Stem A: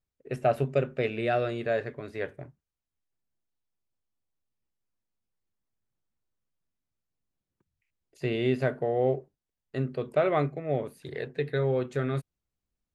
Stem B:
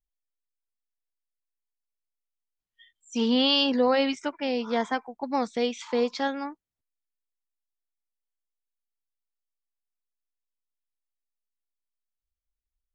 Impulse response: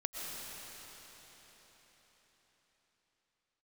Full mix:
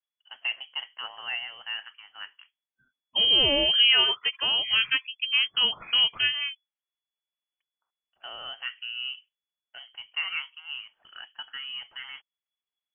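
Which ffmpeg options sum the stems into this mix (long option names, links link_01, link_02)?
-filter_complex "[0:a]highpass=650,volume=-3dB[link_01];[1:a]agate=range=-12dB:threshold=-45dB:ratio=16:detection=peak,volume=2.5dB[link_02];[link_01][link_02]amix=inputs=2:normalize=0,lowpass=frequency=2900:width_type=q:width=0.5098,lowpass=frequency=2900:width_type=q:width=0.6013,lowpass=frequency=2900:width_type=q:width=0.9,lowpass=frequency=2900:width_type=q:width=2.563,afreqshift=-3400"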